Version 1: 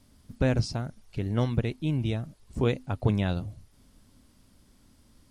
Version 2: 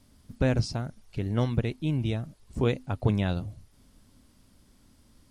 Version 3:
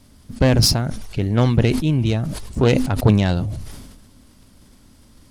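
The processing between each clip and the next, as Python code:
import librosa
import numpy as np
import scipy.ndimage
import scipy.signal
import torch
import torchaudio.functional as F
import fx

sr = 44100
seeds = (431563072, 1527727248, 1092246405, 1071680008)

y1 = x
y2 = fx.self_delay(y1, sr, depth_ms=0.17)
y2 = fx.sustainer(y2, sr, db_per_s=41.0)
y2 = F.gain(torch.from_numpy(y2), 9.0).numpy()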